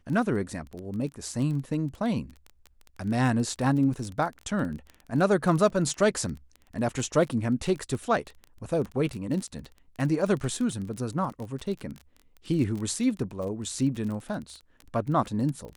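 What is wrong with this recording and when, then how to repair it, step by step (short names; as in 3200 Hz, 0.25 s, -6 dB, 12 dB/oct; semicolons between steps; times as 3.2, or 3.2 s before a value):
crackle 23/s -32 dBFS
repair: de-click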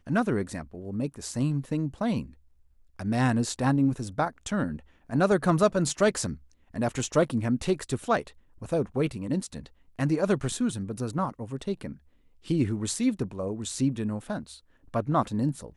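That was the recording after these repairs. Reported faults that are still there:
none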